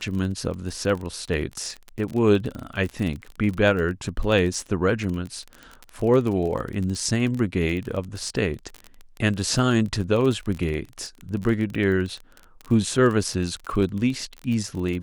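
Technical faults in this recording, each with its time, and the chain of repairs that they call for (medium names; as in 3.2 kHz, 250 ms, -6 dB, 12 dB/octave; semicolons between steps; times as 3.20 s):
crackle 30 per s -28 dBFS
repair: de-click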